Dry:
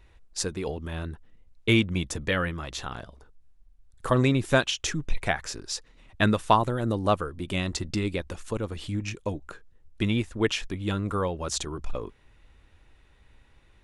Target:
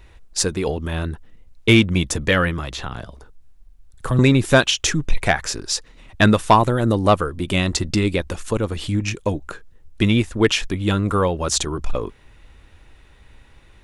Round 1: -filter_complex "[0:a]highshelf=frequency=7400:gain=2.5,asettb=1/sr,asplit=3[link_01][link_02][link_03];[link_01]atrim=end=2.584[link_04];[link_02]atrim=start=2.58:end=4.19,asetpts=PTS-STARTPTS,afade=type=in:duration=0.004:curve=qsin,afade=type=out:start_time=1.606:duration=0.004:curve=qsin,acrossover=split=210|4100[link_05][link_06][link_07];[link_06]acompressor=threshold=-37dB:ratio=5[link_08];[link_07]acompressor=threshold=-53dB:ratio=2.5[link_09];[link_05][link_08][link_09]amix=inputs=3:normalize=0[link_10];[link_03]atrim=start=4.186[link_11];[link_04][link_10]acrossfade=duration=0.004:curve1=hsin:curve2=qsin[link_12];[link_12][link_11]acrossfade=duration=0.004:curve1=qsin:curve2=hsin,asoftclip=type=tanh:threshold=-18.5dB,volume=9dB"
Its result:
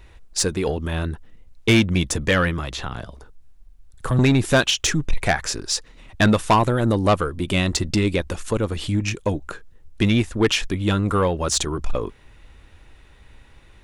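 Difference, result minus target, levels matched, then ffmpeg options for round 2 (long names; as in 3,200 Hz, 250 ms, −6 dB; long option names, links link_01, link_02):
soft clipping: distortion +8 dB
-filter_complex "[0:a]highshelf=frequency=7400:gain=2.5,asettb=1/sr,asplit=3[link_01][link_02][link_03];[link_01]atrim=end=2.584[link_04];[link_02]atrim=start=2.58:end=4.19,asetpts=PTS-STARTPTS,afade=type=in:duration=0.004:curve=qsin,afade=type=out:start_time=1.606:duration=0.004:curve=qsin,acrossover=split=210|4100[link_05][link_06][link_07];[link_06]acompressor=threshold=-37dB:ratio=5[link_08];[link_07]acompressor=threshold=-53dB:ratio=2.5[link_09];[link_05][link_08][link_09]amix=inputs=3:normalize=0[link_10];[link_03]atrim=start=4.186[link_11];[link_04][link_10]acrossfade=duration=0.004:curve1=hsin:curve2=qsin[link_12];[link_12][link_11]acrossfade=duration=0.004:curve1=qsin:curve2=hsin,asoftclip=type=tanh:threshold=-11dB,volume=9dB"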